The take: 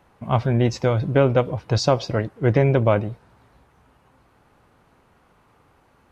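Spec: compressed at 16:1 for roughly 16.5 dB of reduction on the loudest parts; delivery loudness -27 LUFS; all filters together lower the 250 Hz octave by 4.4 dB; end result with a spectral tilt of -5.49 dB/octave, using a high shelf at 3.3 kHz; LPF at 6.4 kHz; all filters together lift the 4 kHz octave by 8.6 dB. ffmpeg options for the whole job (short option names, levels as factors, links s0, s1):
-af "lowpass=6400,equalizer=f=250:t=o:g=-6.5,highshelf=f=3300:g=5.5,equalizer=f=4000:t=o:g=7.5,acompressor=threshold=0.0316:ratio=16,volume=2.51"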